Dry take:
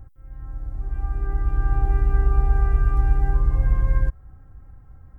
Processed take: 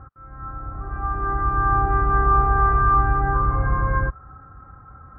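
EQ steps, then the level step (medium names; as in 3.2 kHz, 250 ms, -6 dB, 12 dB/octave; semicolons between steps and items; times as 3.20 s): high-pass 45 Hz; resonant low-pass 1.3 kHz, resonance Q 8.7; bass shelf 83 Hz -9.5 dB; +6.5 dB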